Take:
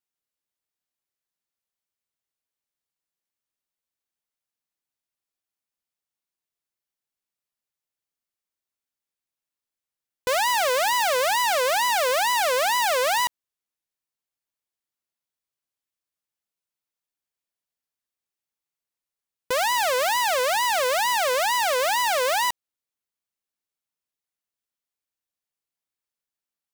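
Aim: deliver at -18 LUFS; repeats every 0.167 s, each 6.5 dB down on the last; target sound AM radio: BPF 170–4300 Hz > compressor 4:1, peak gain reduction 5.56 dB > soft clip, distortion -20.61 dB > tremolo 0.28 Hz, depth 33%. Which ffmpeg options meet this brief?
-af "highpass=170,lowpass=4.3k,aecho=1:1:167|334|501|668|835|1002:0.473|0.222|0.105|0.0491|0.0231|0.0109,acompressor=threshold=-24dB:ratio=4,asoftclip=threshold=-19.5dB,tremolo=f=0.28:d=0.33,volume=11dB"

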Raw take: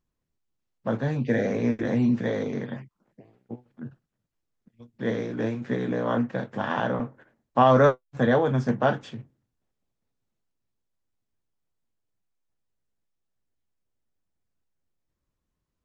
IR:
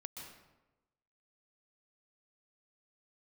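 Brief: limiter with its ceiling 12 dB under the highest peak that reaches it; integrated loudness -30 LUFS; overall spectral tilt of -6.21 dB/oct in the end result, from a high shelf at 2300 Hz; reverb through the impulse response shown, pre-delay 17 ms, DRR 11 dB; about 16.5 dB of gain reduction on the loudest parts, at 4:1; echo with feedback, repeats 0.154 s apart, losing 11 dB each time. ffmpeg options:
-filter_complex "[0:a]highshelf=f=2.3k:g=6,acompressor=threshold=-33dB:ratio=4,alimiter=level_in=6dB:limit=-24dB:level=0:latency=1,volume=-6dB,aecho=1:1:154|308|462:0.282|0.0789|0.0221,asplit=2[a][b];[1:a]atrim=start_sample=2205,adelay=17[c];[b][c]afir=irnorm=-1:irlink=0,volume=-7.5dB[d];[a][d]amix=inputs=2:normalize=0,volume=9.5dB"

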